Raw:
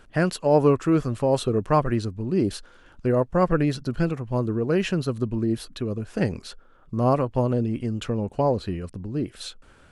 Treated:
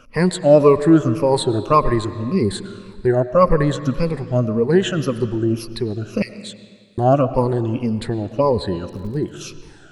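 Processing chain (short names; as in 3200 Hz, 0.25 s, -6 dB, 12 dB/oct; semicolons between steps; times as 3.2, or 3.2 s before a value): moving spectral ripple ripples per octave 0.89, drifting -1.8 Hz, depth 18 dB; 6.22–6.98 steep high-pass 1900 Hz 48 dB/oct; 8.91–9.31 crackle 70/s -> 29/s -37 dBFS; reverb RT60 1.8 s, pre-delay 70 ms, DRR 12.5 dB; gain +2 dB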